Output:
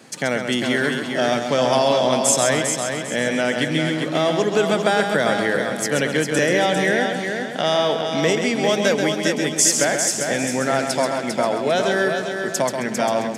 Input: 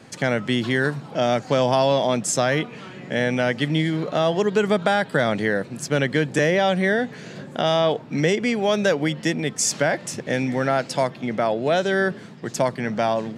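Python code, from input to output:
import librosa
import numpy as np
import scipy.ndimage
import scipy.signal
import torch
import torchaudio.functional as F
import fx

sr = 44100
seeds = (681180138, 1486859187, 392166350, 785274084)

p1 = scipy.signal.sosfilt(scipy.signal.butter(2, 170.0, 'highpass', fs=sr, output='sos'), x)
p2 = fx.high_shelf(p1, sr, hz=6200.0, db=10.5)
y = p2 + fx.echo_heads(p2, sr, ms=133, heads='first and third', feedback_pct=49, wet_db=-6.5, dry=0)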